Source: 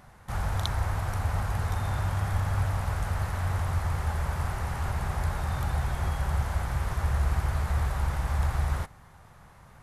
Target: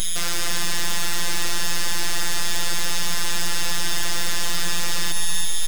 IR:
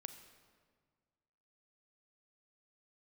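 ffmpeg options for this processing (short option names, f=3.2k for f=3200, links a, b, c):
-filter_complex "[0:a]asplit=2[a][b];[b]acompressor=threshold=-35dB:ratio=6,volume=1.5dB[c];[a][c]amix=inputs=2:normalize=0,lowshelf=f=240:g=-10,aecho=1:1:1.1:0.76,acrossover=split=180|3000[d][e][f];[e]acompressor=threshold=-37dB:ratio=2.5[g];[d][g][f]amix=inputs=3:normalize=0,asetrate=76293,aresample=44100,equalizer=f=1.6k:t=o:w=1.5:g=8.5,aeval=exprs='(mod(15.8*val(0)+1,2)-1)/15.8':c=same,aeval=exprs='val(0)+0.0316*sin(2*PI*5100*n/s)':c=same,aeval=exprs='abs(val(0))':c=same,afftfilt=real='hypot(re,im)*cos(PI*b)':imag='0':win_size=1024:overlap=0.75,asplit=2[h][i];[i]aecho=0:1:332|664|996|1328|1660:0.316|0.155|0.0759|0.0372|0.0182[j];[h][j]amix=inputs=2:normalize=0,alimiter=level_in=16dB:limit=-1dB:release=50:level=0:latency=1,volume=-2dB"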